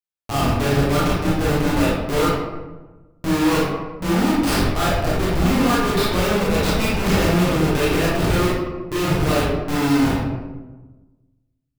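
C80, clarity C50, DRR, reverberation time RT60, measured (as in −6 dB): 2.5 dB, −1.0 dB, −7.0 dB, 1.2 s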